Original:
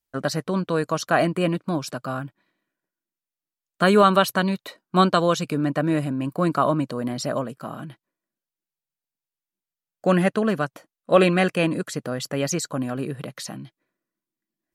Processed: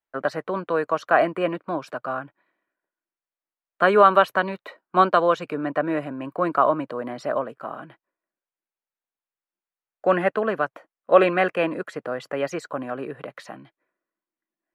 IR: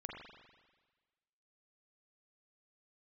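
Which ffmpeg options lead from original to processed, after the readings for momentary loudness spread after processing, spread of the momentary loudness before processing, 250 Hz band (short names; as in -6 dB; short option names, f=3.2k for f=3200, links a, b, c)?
15 LU, 15 LU, -6.0 dB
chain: -filter_complex "[0:a]acrossover=split=360 2500:gain=0.158 1 0.0891[a][b][c];[a][b][c]amix=inputs=3:normalize=0,volume=3dB"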